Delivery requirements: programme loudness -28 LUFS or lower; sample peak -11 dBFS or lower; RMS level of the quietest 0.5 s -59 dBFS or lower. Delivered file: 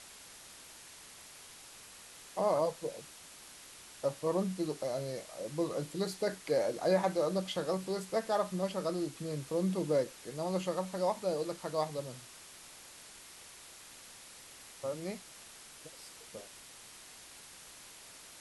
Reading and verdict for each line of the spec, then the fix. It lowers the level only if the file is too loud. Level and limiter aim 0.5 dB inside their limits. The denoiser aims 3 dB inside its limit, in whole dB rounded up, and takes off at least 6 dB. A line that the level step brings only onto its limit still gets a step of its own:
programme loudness -35.0 LUFS: OK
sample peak -17.0 dBFS: OK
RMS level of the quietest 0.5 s -53 dBFS: fail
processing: denoiser 9 dB, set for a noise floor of -53 dBFS

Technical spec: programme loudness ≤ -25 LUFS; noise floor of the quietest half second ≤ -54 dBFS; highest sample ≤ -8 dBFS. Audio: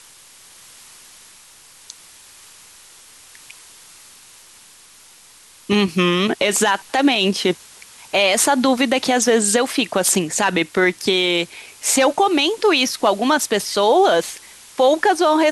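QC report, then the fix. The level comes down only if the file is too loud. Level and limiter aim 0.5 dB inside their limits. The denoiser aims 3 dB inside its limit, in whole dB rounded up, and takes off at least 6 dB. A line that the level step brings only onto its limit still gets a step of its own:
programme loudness -17.0 LUFS: fail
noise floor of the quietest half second -47 dBFS: fail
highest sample -5.5 dBFS: fail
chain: gain -8.5 dB

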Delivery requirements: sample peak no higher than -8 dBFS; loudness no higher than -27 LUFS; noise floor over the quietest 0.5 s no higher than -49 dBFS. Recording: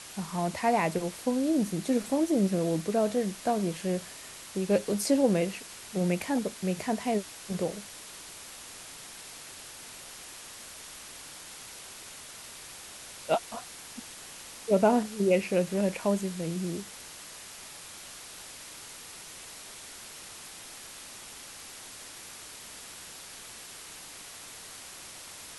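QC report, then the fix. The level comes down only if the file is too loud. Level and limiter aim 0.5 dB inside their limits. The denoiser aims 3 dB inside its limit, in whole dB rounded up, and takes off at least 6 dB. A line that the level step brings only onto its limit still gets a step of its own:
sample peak -11.0 dBFS: OK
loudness -29.5 LUFS: OK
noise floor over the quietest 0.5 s -46 dBFS: fail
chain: denoiser 6 dB, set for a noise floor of -46 dBFS

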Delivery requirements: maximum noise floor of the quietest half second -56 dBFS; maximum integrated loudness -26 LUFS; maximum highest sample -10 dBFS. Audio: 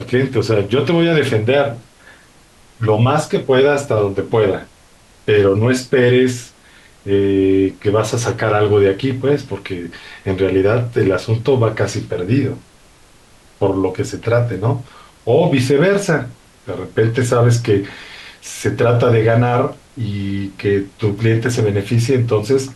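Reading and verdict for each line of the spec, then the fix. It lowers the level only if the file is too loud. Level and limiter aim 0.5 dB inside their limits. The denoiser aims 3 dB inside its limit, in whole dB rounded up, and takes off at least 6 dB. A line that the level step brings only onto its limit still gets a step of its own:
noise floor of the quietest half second -47 dBFS: fail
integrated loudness -16.0 LUFS: fail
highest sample -4.0 dBFS: fail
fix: gain -10.5 dB

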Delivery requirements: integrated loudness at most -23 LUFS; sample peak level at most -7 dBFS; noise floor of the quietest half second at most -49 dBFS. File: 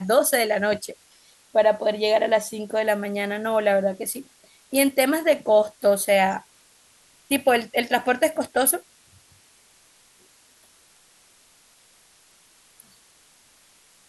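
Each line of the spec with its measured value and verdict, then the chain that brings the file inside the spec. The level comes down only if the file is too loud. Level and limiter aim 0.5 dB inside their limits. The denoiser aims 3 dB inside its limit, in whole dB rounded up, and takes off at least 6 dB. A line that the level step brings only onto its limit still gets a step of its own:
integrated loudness -22.0 LUFS: fail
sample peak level -6.0 dBFS: fail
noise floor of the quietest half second -57 dBFS: OK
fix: gain -1.5 dB

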